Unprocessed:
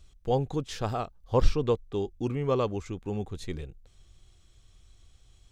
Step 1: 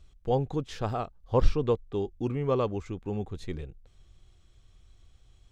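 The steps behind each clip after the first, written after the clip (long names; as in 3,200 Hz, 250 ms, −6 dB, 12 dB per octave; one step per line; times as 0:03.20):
high-shelf EQ 4,200 Hz −8.5 dB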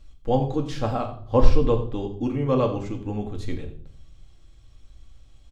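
single-tap delay 86 ms −16 dB
on a send at −2 dB: convolution reverb RT60 0.55 s, pre-delay 4 ms
on the sum: level +2.5 dB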